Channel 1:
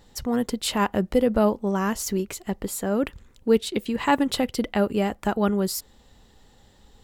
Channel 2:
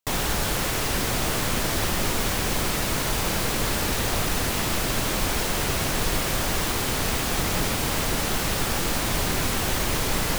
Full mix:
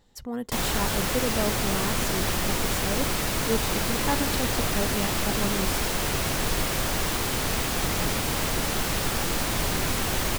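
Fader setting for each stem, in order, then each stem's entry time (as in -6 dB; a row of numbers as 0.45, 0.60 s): -8.0, -1.5 dB; 0.00, 0.45 s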